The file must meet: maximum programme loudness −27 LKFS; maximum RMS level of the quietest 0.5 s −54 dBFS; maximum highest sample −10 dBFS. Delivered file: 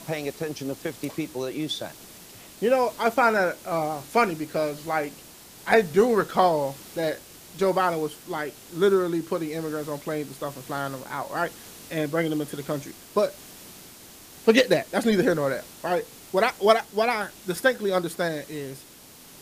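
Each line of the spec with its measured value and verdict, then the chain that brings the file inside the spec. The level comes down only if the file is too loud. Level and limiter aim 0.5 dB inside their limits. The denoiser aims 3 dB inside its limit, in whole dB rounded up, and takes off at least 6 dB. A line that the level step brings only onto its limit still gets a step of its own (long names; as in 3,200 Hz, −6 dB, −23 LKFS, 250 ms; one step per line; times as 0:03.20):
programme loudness −25.5 LKFS: out of spec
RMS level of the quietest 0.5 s −48 dBFS: out of spec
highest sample −4.5 dBFS: out of spec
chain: broadband denoise 7 dB, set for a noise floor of −48 dBFS
level −2 dB
brickwall limiter −10.5 dBFS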